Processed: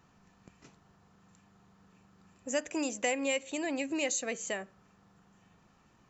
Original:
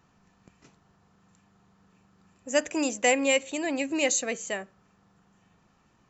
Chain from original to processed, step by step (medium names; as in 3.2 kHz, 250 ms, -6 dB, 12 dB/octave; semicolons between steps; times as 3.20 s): compression 2:1, threshold -34 dBFS, peak gain reduction 9.5 dB